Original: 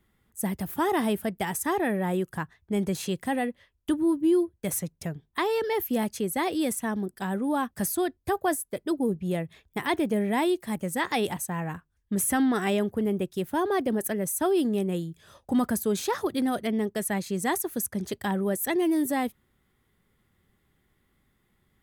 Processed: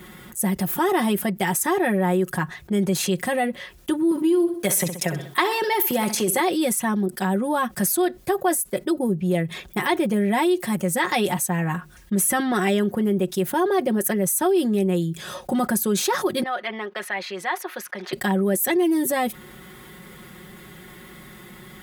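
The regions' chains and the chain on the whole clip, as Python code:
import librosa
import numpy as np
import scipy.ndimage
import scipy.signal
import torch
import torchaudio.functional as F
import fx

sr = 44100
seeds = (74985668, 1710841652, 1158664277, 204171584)

y = fx.chain(x, sr, fx.highpass(hz=410.0, slope=6),
    fx.transient(attack_db=8, sustain_db=12),
    fx.echo_feedback(ms=64, feedback_pct=32, wet_db=-15), at=(4.11, 6.4))
y = fx.chain(y, sr, fx.highpass(hz=970.0, slope=12),
    fx.air_absorb(metres=330.0), at=(16.43, 18.13))
y = fx.highpass(y, sr, hz=140.0, slope=6)
y = y + 0.72 * np.pad(y, (int(5.5 * sr / 1000.0), 0))[:len(y)]
y = fx.env_flatten(y, sr, amount_pct=50)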